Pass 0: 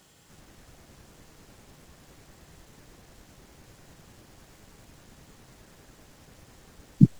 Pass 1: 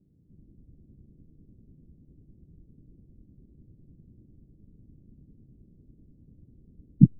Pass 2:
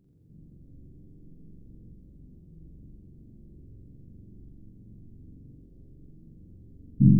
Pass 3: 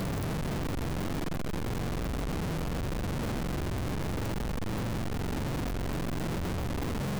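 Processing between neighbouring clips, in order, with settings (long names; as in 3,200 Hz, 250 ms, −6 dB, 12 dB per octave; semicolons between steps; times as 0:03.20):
inverse Chebyshev low-pass filter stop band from 1,800 Hz, stop band 80 dB; level +1 dB
spectrum averaged block by block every 100 ms; flutter between parallel walls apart 7.5 metres, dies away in 1.2 s; level +2.5 dB
sign of each sample alone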